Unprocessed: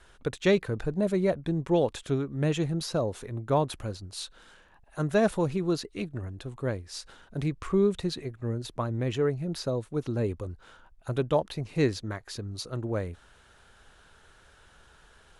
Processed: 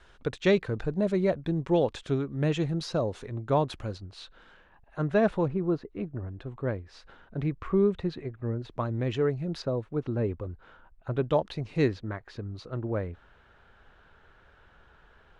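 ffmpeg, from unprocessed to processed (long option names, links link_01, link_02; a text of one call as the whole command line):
ffmpeg -i in.wav -af "asetnsamples=nb_out_samples=441:pad=0,asendcmd='3.98 lowpass f 2900;5.48 lowpass f 1300;6.28 lowpass f 2300;8.7 lowpass f 4700;9.62 lowpass f 2300;11.24 lowpass f 5000;11.88 lowpass f 2400',lowpass=5400" out.wav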